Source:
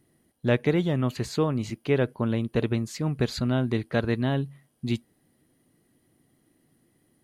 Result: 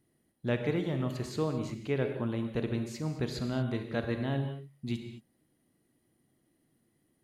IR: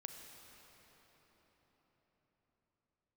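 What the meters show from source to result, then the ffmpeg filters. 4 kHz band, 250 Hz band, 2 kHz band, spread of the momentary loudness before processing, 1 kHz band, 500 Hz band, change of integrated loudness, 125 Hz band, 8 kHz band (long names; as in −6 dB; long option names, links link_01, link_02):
−7.0 dB, −6.5 dB, −7.0 dB, 7 LU, −6.5 dB, −6.5 dB, −6.5 dB, −6.5 dB, −7.0 dB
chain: -filter_complex "[1:a]atrim=start_sample=2205,afade=type=out:start_time=0.36:duration=0.01,atrim=end_sample=16317,asetrate=57330,aresample=44100[link_01];[0:a][link_01]afir=irnorm=-1:irlink=0"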